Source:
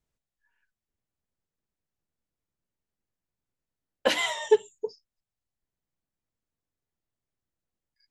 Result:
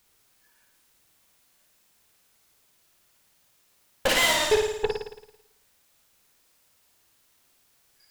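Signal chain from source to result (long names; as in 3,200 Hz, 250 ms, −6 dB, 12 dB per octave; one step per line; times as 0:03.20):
brickwall limiter −19 dBFS, peak gain reduction 10 dB
harmonic generator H 8 −13 dB, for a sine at −19 dBFS
bit-depth reduction 12 bits, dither triangular
flutter between parallel walls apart 9.5 metres, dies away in 0.82 s
level +5 dB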